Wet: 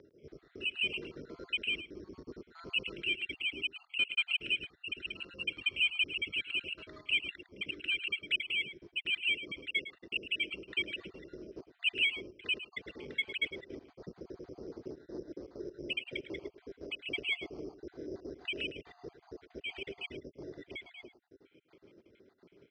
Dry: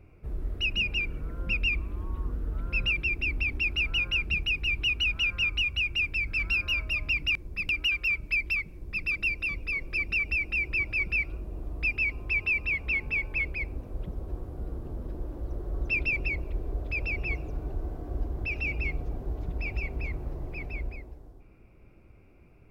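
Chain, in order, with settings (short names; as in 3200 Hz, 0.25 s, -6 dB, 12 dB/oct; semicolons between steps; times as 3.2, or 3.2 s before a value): random spectral dropouts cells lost 56%; low shelf 420 Hz +3.5 dB; upward compressor, threshold -50 dBFS; rotary speaker horn 0.65 Hz, later 7 Hz, at 8.07; soft clip -22.5 dBFS, distortion -20 dB; on a send: echo 0.107 s -13.5 dB; on the sum: careless resampling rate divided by 8×, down filtered, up hold; speaker cabinet 320–4200 Hz, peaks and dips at 400 Hz +5 dB, 760 Hz -8 dB, 1100 Hz -5 dB, 2000 Hz +3 dB; gain +3 dB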